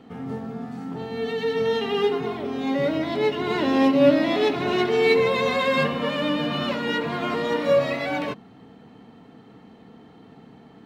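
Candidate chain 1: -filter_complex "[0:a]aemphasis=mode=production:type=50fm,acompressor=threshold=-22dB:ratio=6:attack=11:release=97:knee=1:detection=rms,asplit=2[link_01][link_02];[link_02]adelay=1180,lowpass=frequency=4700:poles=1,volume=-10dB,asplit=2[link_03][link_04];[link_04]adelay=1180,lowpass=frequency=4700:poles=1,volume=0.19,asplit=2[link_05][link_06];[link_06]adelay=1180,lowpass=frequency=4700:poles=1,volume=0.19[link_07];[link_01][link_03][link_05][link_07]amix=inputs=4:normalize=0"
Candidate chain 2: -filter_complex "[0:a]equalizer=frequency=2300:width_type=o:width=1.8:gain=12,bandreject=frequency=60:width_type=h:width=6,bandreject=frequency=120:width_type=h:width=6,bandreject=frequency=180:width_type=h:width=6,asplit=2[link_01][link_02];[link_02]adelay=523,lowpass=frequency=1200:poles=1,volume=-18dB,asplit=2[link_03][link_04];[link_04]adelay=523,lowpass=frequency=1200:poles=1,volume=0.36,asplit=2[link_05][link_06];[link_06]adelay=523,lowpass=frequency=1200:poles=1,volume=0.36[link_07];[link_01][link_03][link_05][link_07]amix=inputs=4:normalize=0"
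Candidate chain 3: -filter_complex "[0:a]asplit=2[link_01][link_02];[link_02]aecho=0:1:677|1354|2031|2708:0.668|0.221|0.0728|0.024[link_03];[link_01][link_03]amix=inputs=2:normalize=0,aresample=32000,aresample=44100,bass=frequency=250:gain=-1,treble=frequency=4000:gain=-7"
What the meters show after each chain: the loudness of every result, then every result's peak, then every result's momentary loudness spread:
−26.0, −18.0, −21.5 LKFS; −13.5, −2.0, −5.0 dBFS; 11, 17, 16 LU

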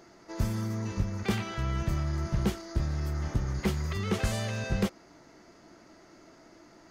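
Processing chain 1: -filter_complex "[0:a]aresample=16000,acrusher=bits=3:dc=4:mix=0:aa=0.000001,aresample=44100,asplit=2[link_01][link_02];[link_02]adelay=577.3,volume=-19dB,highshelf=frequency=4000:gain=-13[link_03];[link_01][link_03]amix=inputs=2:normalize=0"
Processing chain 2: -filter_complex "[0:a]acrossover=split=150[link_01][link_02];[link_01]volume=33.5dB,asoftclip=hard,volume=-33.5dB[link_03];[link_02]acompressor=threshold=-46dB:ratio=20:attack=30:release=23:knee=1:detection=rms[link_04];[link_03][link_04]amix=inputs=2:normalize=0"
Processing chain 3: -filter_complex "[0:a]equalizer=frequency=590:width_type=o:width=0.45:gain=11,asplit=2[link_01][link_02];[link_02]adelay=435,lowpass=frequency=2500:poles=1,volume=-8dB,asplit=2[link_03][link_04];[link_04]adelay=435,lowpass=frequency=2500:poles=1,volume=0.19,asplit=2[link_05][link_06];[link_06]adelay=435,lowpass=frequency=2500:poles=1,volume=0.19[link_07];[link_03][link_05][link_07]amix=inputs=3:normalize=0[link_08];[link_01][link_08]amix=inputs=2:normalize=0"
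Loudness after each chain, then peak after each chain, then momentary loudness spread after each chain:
−35.5, −37.5, −30.5 LKFS; −18.0, −26.0, −14.0 dBFS; 3, 18, 10 LU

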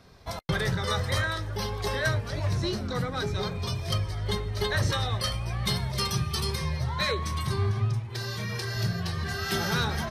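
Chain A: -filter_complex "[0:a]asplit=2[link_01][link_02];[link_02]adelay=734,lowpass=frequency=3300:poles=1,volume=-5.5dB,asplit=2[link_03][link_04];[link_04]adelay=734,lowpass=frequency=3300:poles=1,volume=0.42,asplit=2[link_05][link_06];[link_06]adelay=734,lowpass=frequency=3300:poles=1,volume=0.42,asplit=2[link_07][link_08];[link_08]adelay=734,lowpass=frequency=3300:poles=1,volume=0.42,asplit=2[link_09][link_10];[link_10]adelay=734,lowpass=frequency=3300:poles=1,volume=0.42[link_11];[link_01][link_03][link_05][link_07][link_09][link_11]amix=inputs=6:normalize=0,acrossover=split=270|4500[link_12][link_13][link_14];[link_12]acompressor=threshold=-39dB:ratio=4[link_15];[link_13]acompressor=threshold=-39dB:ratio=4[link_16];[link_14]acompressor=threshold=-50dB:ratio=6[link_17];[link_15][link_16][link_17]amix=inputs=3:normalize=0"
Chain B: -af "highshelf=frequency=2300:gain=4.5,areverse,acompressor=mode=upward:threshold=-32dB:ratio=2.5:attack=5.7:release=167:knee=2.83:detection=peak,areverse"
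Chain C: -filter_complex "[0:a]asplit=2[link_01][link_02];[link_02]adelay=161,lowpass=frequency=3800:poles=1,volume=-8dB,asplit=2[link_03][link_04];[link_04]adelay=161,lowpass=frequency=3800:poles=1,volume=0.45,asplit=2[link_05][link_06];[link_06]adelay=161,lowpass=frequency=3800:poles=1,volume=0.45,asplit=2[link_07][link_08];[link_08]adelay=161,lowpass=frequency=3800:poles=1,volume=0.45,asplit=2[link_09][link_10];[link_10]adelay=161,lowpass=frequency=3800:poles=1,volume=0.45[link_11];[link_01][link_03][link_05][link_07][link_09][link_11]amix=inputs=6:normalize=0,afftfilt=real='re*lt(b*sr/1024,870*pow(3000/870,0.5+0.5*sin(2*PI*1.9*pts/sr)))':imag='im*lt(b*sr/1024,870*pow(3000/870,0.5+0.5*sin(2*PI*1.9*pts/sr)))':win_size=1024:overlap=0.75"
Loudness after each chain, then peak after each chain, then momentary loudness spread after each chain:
−37.0, −28.0, −30.0 LKFS; −22.5, −13.0, −13.5 dBFS; 1, 5, 5 LU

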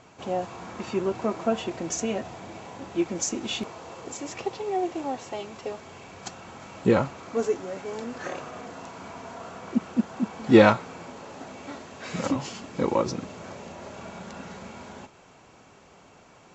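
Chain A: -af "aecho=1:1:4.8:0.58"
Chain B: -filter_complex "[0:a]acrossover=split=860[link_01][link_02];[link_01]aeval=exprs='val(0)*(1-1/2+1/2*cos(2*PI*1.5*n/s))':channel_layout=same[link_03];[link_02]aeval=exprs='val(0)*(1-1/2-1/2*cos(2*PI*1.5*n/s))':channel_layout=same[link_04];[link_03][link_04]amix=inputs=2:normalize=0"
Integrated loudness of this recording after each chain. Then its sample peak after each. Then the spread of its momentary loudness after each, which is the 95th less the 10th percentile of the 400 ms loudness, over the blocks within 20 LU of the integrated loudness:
−26.0, −31.5 LKFS; −1.5, −6.0 dBFS; 17, 16 LU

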